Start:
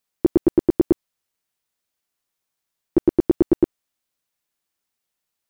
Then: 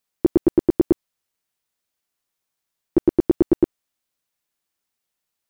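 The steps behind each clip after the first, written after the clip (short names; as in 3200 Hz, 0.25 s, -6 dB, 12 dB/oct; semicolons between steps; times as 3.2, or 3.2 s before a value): nothing audible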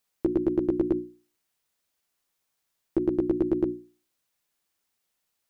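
notches 60/120/180/240/300/360 Hz; limiter -17 dBFS, peak gain reduction 9 dB; gain +2 dB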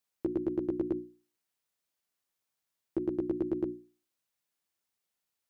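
HPF 47 Hz; gain -7 dB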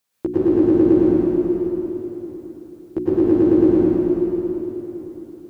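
reverb RT60 3.9 s, pre-delay 88 ms, DRR -10 dB; gain +8.5 dB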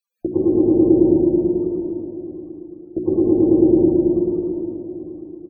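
loudest bins only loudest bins 32; on a send: loudspeakers at several distances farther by 24 m -11 dB, 89 m -9 dB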